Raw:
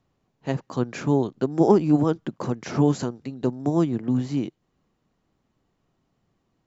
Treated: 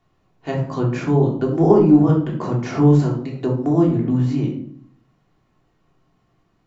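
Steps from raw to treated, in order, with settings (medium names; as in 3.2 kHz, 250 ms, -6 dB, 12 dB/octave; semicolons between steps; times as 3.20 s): treble shelf 3 kHz -10.5 dB; simulated room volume 620 m³, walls furnished, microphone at 3.3 m; tape noise reduction on one side only encoder only; trim -1 dB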